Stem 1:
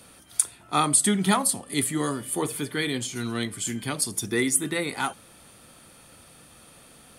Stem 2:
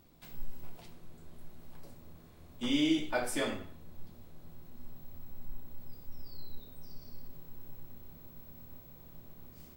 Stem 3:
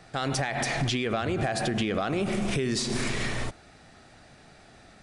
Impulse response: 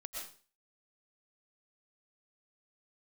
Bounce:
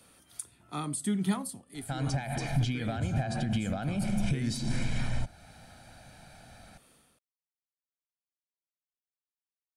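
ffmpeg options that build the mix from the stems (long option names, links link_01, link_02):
-filter_complex "[0:a]dynaudnorm=framelen=300:gausssize=3:maxgain=10dB,volume=-8.5dB,afade=type=out:start_time=1.39:duration=0.26:silence=0.281838[link_01];[2:a]aecho=1:1:1.3:0.77,adelay=1750,volume=-1.5dB[link_02];[link_01][link_02]amix=inputs=2:normalize=0,acrossover=split=310[link_03][link_04];[link_04]acompressor=threshold=-55dB:ratio=1.5[link_05];[link_03][link_05]amix=inputs=2:normalize=0"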